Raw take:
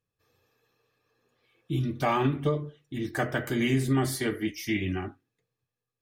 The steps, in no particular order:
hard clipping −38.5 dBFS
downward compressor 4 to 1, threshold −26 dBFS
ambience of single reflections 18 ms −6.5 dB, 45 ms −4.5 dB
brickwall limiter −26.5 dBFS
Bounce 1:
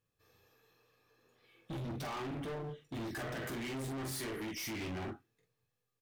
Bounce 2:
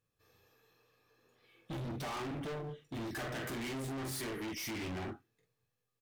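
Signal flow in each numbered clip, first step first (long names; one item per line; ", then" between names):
downward compressor, then brickwall limiter, then ambience of single reflections, then hard clipping
ambience of single reflections, then downward compressor, then hard clipping, then brickwall limiter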